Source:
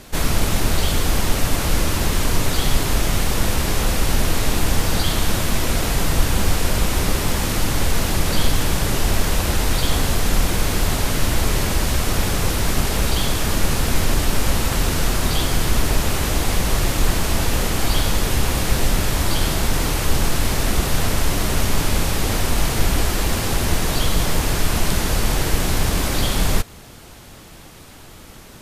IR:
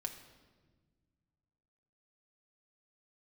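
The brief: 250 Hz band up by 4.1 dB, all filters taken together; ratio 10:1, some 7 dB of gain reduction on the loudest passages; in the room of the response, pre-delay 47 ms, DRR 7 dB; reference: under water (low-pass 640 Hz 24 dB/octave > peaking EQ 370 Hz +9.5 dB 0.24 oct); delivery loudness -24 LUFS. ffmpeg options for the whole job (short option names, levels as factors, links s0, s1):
-filter_complex "[0:a]equalizer=f=250:t=o:g=3.5,acompressor=threshold=0.141:ratio=10,asplit=2[s0][s1];[1:a]atrim=start_sample=2205,adelay=47[s2];[s1][s2]afir=irnorm=-1:irlink=0,volume=0.501[s3];[s0][s3]amix=inputs=2:normalize=0,lowpass=f=640:w=0.5412,lowpass=f=640:w=1.3066,equalizer=f=370:t=o:w=0.24:g=9.5,volume=1.19"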